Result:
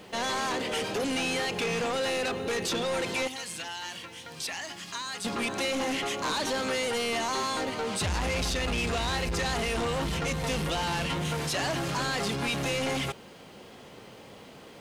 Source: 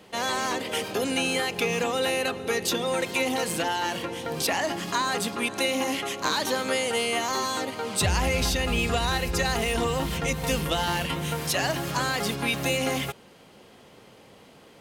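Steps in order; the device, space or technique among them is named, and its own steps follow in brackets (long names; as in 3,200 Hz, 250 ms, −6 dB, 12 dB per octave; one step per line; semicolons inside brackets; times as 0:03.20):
0:03.27–0:05.25: guitar amp tone stack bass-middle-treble 5-5-5
compact cassette (soft clipping −30 dBFS, distortion −8 dB; low-pass filter 9,000 Hz 12 dB per octave; tape wow and flutter 28 cents; white noise bed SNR 38 dB)
level +3.5 dB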